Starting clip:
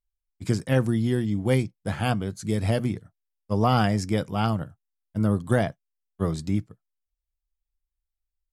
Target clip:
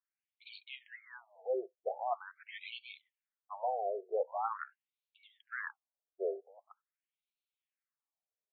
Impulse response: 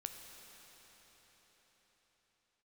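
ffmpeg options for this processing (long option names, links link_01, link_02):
-af "highpass=190,areverse,acompressor=threshold=-31dB:ratio=16,areverse,afftfilt=real='re*between(b*sr/1024,500*pow(3200/500,0.5+0.5*sin(2*PI*0.44*pts/sr))/1.41,500*pow(3200/500,0.5+0.5*sin(2*PI*0.44*pts/sr))*1.41)':imag='im*between(b*sr/1024,500*pow(3200/500,0.5+0.5*sin(2*PI*0.44*pts/sr))/1.41,500*pow(3200/500,0.5+0.5*sin(2*PI*0.44*pts/sr))*1.41)':win_size=1024:overlap=0.75,volume=5.5dB"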